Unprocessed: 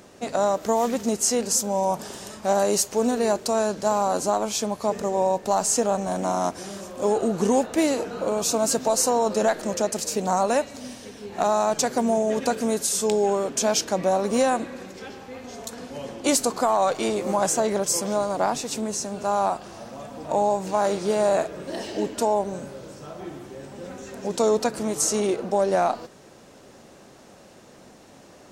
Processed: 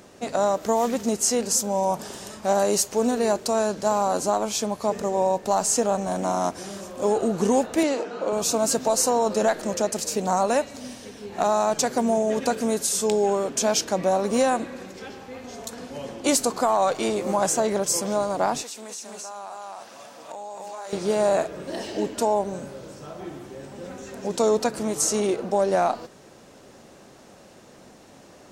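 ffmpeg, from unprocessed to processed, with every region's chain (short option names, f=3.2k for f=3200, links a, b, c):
-filter_complex "[0:a]asettb=1/sr,asplit=3[a][b][c];[a]atrim=end=7.834[d];[b]atrim=start=7.83:end=8.33,asetpts=PTS-STARTPTS,afade=t=in:d=0.004:c=qsin,afade=t=out:st=0.496:d=0.004:c=qsin,highpass=260,lowpass=5.9k,bandreject=f=4k:w=29[e];[c]atrim=start=8.326[f];[d][e]acrossfade=d=0.004:c1=hsin:c2=qsin[g];[g][f]acrossfade=d=0.004:c1=qsin:c2=hsin,asettb=1/sr,asplit=3[h][i][j];[h]atrim=end=18.634[k];[i]atrim=start=18.63:end=20.93,asetpts=PTS-STARTPTS,afade=t=in:d=0.004:c=qsin,afade=t=out:st=2.296:d=0.004:c=qsin,highpass=f=1.3k:p=1,aecho=1:1:261:0.668,atrim=end_sample=101430,acompressor=threshold=-33dB:ratio=5:attack=3.2:release=140:knee=1:detection=peak[l];[j]atrim=start=20.926[m];[k][l]acrossfade=d=0.004:c1=hsin:c2=qsin[n];[n][m]acrossfade=d=0.004:c1=qsin:c2=hsin"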